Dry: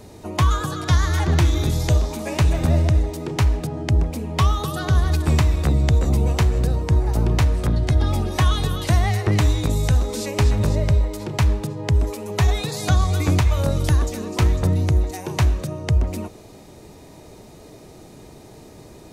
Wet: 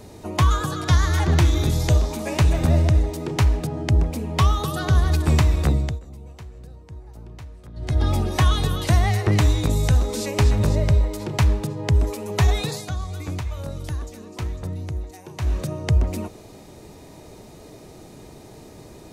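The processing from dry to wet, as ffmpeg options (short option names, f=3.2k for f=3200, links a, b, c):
-filter_complex "[0:a]asplit=5[a][b][c][d][e];[a]atrim=end=6,asetpts=PTS-STARTPTS,afade=t=out:st=5.68:d=0.32:silence=0.0841395[f];[b]atrim=start=6:end=7.74,asetpts=PTS-STARTPTS,volume=-21.5dB[g];[c]atrim=start=7.74:end=12.86,asetpts=PTS-STARTPTS,afade=t=in:d=0.32:silence=0.0841395,afade=t=out:st=4.97:d=0.15:silence=0.281838[h];[d]atrim=start=12.86:end=15.41,asetpts=PTS-STARTPTS,volume=-11dB[i];[e]atrim=start=15.41,asetpts=PTS-STARTPTS,afade=t=in:d=0.15:silence=0.281838[j];[f][g][h][i][j]concat=n=5:v=0:a=1"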